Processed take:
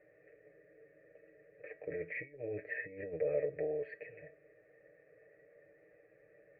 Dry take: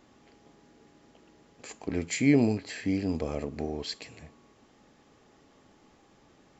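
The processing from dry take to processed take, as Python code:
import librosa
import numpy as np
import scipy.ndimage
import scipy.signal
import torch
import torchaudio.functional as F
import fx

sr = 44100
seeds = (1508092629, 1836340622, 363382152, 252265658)

y = scipy.signal.sosfilt(scipy.signal.butter(2, 57.0, 'highpass', fs=sr, output='sos'), x)
y = fx.peak_eq(y, sr, hz=870.0, db=-4.0, octaves=1.1)
y = y + 0.77 * np.pad(y, (int(6.7 * sr / 1000.0), 0))[:len(y)]
y = fx.over_compress(y, sr, threshold_db=-30.0, ratio=-1.0)
y = fx.formant_cascade(y, sr, vowel='e')
y = fx.fixed_phaser(y, sr, hz=950.0, stages=6)
y = fx.comb_fb(y, sr, f0_hz=320.0, decay_s=0.25, harmonics='all', damping=0.0, mix_pct=60)
y = y * librosa.db_to_amplitude(13.0)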